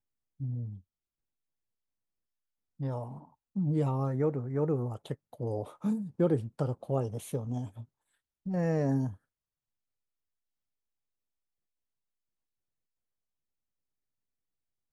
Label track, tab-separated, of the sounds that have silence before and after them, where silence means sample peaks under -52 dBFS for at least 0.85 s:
2.800000	9.160000	sound